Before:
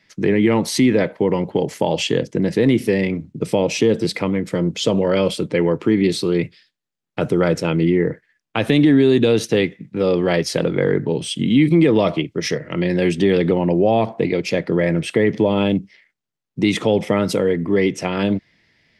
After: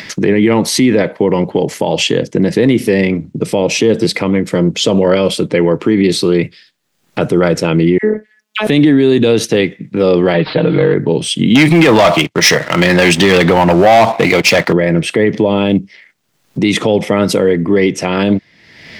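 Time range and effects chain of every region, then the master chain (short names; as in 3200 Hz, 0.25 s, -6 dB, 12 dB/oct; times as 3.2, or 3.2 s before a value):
7.98–8.67 HPF 140 Hz + dispersion lows, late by 59 ms, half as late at 1200 Hz + robotiser 214 Hz
10.34–10.94 delta modulation 64 kbps, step -34 dBFS + steep low-pass 4200 Hz 72 dB/oct + comb 6.5 ms, depth 85%
11.55–14.73 resonant low shelf 570 Hz -8.5 dB, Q 1.5 + sample leveller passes 3
whole clip: low shelf 68 Hz -8.5 dB; upward compressor, threshold -23 dBFS; maximiser +9.5 dB; gain -1 dB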